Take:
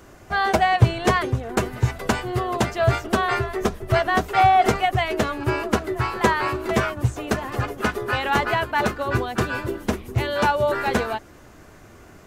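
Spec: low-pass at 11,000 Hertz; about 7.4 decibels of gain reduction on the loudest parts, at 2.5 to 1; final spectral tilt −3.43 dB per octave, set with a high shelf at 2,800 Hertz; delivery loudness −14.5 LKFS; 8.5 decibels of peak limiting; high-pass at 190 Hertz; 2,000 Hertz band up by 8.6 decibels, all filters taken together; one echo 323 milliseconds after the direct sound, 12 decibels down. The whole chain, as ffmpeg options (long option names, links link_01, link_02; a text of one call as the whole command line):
ffmpeg -i in.wav -af "highpass=190,lowpass=11000,equalizer=frequency=2000:width_type=o:gain=8,highshelf=frequency=2800:gain=7.5,acompressor=threshold=-21dB:ratio=2.5,alimiter=limit=-15dB:level=0:latency=1,aecho=1:1:323:0.251,volume=10.5dB" out.wav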